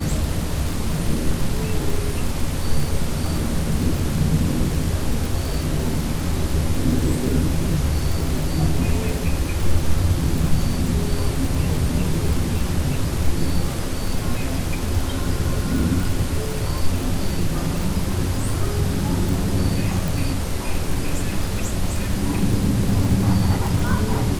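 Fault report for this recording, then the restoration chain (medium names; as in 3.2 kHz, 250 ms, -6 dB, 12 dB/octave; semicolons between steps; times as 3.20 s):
crackle 57 per s -23 dBFS
20.08 s: pop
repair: de-click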